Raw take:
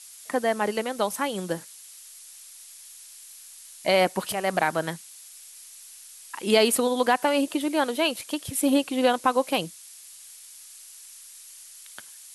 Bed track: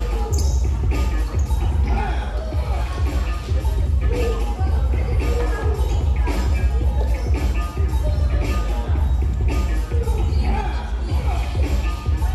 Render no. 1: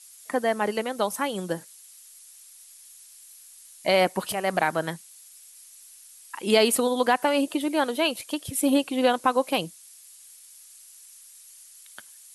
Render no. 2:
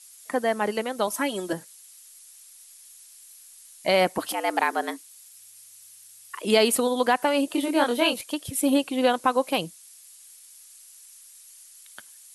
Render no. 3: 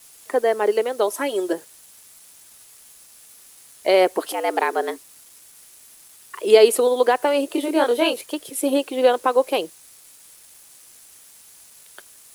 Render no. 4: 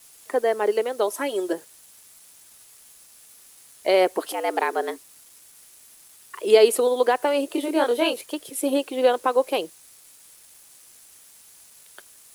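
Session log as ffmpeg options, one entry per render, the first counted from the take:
ffmpeg -i in.wav -af "afftdn=noise_reduction=6:noise_floor=-47" out.wav
ffmpeg -i in.wav -filter_complex "[0:a]asettb=1/sr,asplit=3[link_01][link_02][link_03];[link_01]atrim=end=1.074[link_04];[link_02]atrim=start=1.07:end=1.53,asetpts=PTS-STARTPTS,afade=type=in:duration=0.004:curve=qsin,afade=type=out:start_time=0.456:duration=0.004:curve=qsin,aecho=1:1:3.1:0.8,atrim=end_sample=20286[link_05];[link_03]atrim=start=1.526[link_06];[link_04][link_05]acrossfade=duration=0.004:curve1=hsin:curve2=qsin[link_07];[link_07][link_06]acrossfade=duration=0.004:curve1=qsin:curve2=hsin,asettb=1/sr,asplit=3[link_08][link_09][link_10];[link_08]atrim=end=4.184[link_11];[link_09]atrim=start=4.18:end=6.45,asetpts=PTS-STARTPTS,afade=type=in:duration=0.004:curve=qsin,afade=type=out:start_time=2.266:duration=0.004:curve=qsin,afreqshift=110[link_12];[link_10]atrim=start=6.446[link_13];[link_11][link_12]acrossfade=duration=0.004:curve1=hsin:curve2=qsin[link_14];[link_14][link_13]acrossfade=duration=0.004:curve1=qsin:curve2=hsin,asettb=1/sr,asplit=3[link_15][link_16][link_17];[link_15]atrim=end=7.524[link_18];[link_16]atrim=start=7.52:end=8.21,asetpts=PTS-STARTPTS,afade=type=in:duration=0.004:curve=qsin,afade=type=out:start_time=0.686:duration=0.004:curve=qsin,asplit=2[link_19][link_20];[link_20]adelay=25,volume=-2dB[link_21];[link_19][link_21]amix=inputs=2:normalize=0,atrim=end_sample=30429[link_22];[link_17]atrim=start=8.206[link_23];[link_18][link_22]acrossfade=duration=0.004:curve1=hsin:curve2=qsin[link_24];[link_24][link_23]acrossfade=duration=0.004:curve1=qsin:curve2=hsin" out.wav
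ffmpeg -i in.wav -af "highpass=frequency=400:width_type=q:width=3.5,acrusher=bits=7:mix=0:aa=0.000001" out.wav
ffmpeg -i in.wav -af "volume=-2.5dB" out.wav

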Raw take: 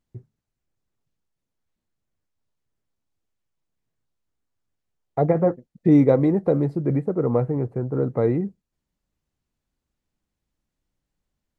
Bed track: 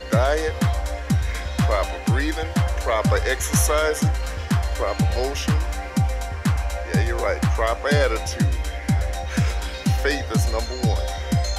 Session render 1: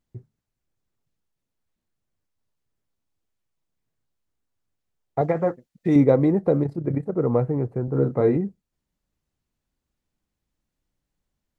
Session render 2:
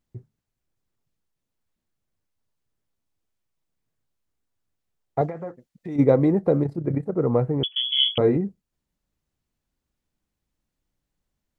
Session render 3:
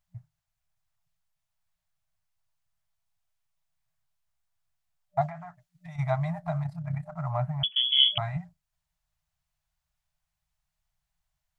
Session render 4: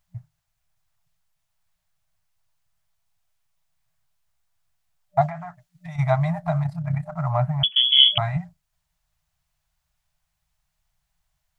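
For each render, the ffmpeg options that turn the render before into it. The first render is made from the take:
ffmpeg -i in.wav -filter_complex "[0:a]asettb=1/sr,asplit=3[link_01][link_02][link_03];[link_01]atrim=end=5.214[link_04];[link_02]atrim=start=5.21:end=5.96,asetpts=PTS-STARTPTS,afade=type=in:duration=0.004:curve=qsin,afade=type=out:start_time=0.746:duration=0.004:curve=qsin,tiltshelf=frequency=880:gain=-6[link_05];[link_03]atrim=start=5.956[link_06];[link_04][link_05]acrossfade=duration=0.004:curve1=hsin:curve2=qsin[link_07];[link_07][link_06]acrossfade=duration=0.004:curve1=qsin:curve2=hsin,asettb=1/sr,asplit=3[link_08][link_09][link_10];[link_08]atrim=end=6.634[link_11];[link_09]atrim=start=6.63:end=7.15,asetpts=PTS-STARTPTS,afade=type=in:duration=0.004:curve=qsin,afade=type=out:start_time=0.516:duration=0.004:curve=qsin,tremolo=f=32:d=0.667[link_12];[link_10]atrim=start=7.146[link_13];[link_11][link_12]acrossfade=duration=0.004:curve1=hsin:curve2=qsin[link_14];[link_14][link_13]acrossfade=duration=0.004:curve1=qsin:curve2=hsin,asettb=1/sr,asplit=3[link_15][link_16][link_17];[link_15]atrim=end=7.854[link_18];[link_16]atrim=start=7.85:end=8.37,asetpts=PTS-STARTPTS,afade=type=in:duration=0.004:curve=qsin,afade=type=out:start_time=0.516:duration=0.004:curve=qsin,asplit=2[link_19][link_20];[link_20]adelay=29,volume=-6dB[link_21];[link_19][link_21]amix=inputs=2:normalize=0,atrim=end_sample=22932[link_22];[link_17]atrim=start=8.366[link_23];[link_18][link_22]acrossfade=duration=0.004:curve1=hsin:curve2=qsin[link_24];[link_24][link_23]acrossfade=duration=0.004:curve1=qsin:curve2=hsin" out.wav
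ffmpeg -i in.wav -filter_complex "[0:a]asplit=3[link_01][link_02][link_03];[link_01]afade=type=out:start_time=5.28:duration=0.02[link_04];[link_02]acompressor=threshold=-39dB:ratio=2:attack=3.2:release=140:knee=1:detection=peak,afade=type=in:start_time=5.28:duration=0.02,afade=type=out:start_time=5.98:duration=0.02[link_05];[link_03]afade=type=in:start_time=5.98:duration=0.02[link_06];[link_04][link_05][link_06]amix=inputs=3:normalize=0,asettb=1/sr,asplit=3[link_07][link_08][link_09];[link_07]atrim=end=7.634[link_10];[link_08]atrim=start=7.63:end=8.18,asetpts=PTS-STARTPTS,afade=type=in:duration=0.004:curve=qsin,afade=type=out:start_time=0.546:duration=0.004:curve=qsin,lowpass=frequency=3000:width_type=q:width=0.5098,lowpass=frequency=3000:width_type=q:width=0.6013,lowpass=frequency=3000:width_type=q:width=0.9,lowpass=frequency=3000:width_type=q:width=2.563,afreqshift=-3500[link_11];[link_09]atrim=start=8.176[link_12];[link_10][link_11]acrossfade=duration=0.004:curve1=hsin:curve2=qsin[link_13];[link_13][link_12]acrossfade=duration=0.004:curve1=qsin:curve2=hsin" out.wav
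ffmpeg -i in.wav -af "equalizer=frequency=120:width_type=o:width=2.6:gain=-4,afftfilt=real='re*(1-between(b*sr/4096,180,600))':imag='im*(1-between(b*sr/4096,180,600))':win_size=4096:overlap=0.75" out.wav
ffmpeg -i in.wav -af "volume=7dB,alimiter=limit=-2dB:level=0:latency=1" out.wav

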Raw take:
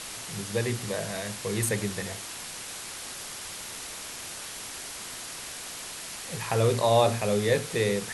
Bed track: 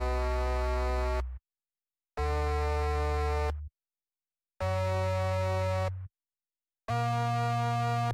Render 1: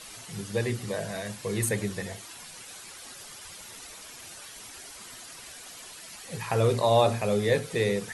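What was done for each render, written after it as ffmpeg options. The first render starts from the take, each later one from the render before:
ffmpeg -i in.wav -af "afftdn=noise_reduction=10:noise_floor=-40" out.wav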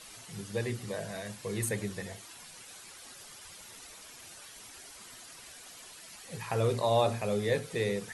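ffmpeg -i in.wav -af "volume=-5dB" out.wav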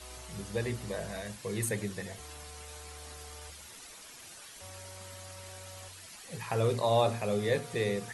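ffmpeg -i in.wav -i bed.wav -filter_complex "[1:a]volume=-20dB[link_01];[0:a][link_01]amix=inputs=2:normalize=0" out.wav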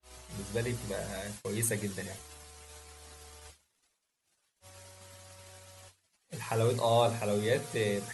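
ffmpeg -i in.wav -af "agate=range=-34dB:threshold=-45dB:ratio=16:detection=peak,adynamicequalizer=threshold=0.00282:dfrequency=5400:dqfactor=0.7:tfrequency=5400:tqfactor=0.7:attack=5:release=100:ratio=0.375:range=2:mode=boostabove:tftype=highshelf" out.wav

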